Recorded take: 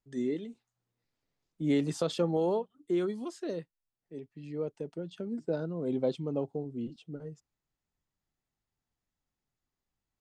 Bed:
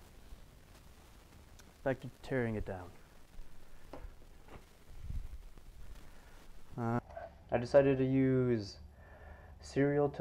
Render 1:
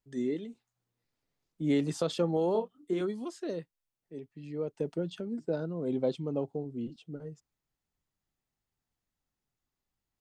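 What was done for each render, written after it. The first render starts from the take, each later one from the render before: 2.52–3.01 doubler 27 ms -4.5 dB; 4.78–5.2 gain +5.5 dB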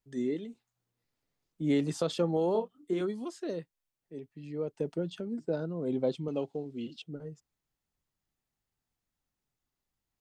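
6.28–7.02 weighting filter D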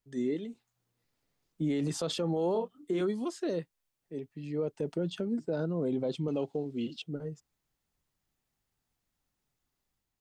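AGC gain up to 4 dB; limiter -23 dBFS, peak gain reduction 9.5 dB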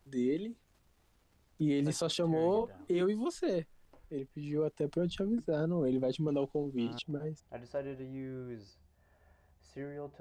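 add bed -12 dB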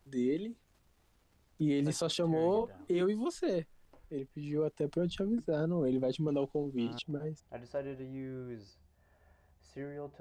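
nothing audible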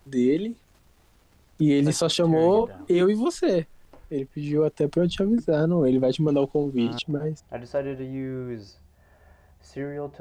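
gain +10.5 dB

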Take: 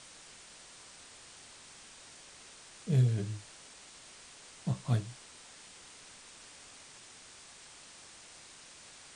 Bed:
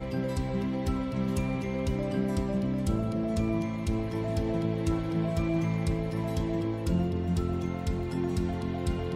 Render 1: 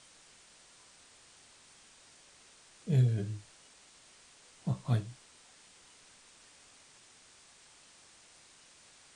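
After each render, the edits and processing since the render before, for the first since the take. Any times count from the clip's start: noise print and reduce 6 dB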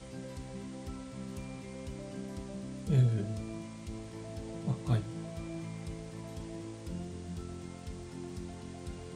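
add bed -13 dB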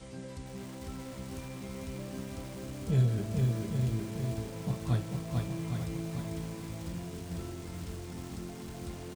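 echo 0.812 s -6.5 dB; lo-fi delay 0.445 s, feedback 35%, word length 8-bit, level -3 dB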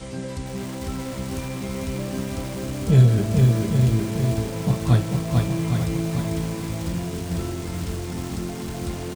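gain +12 dB

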